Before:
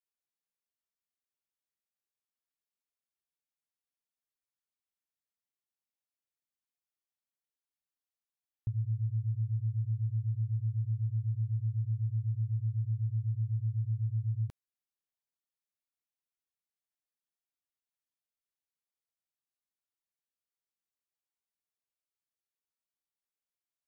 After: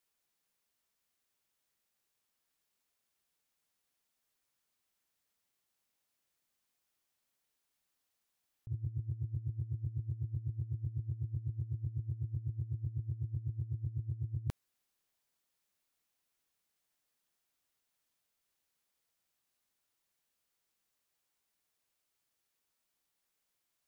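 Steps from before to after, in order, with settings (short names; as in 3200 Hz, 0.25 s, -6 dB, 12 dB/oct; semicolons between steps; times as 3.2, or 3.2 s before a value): negative-ratio compressor -39 dBFS, ratio -0.5; gain +2.5 dB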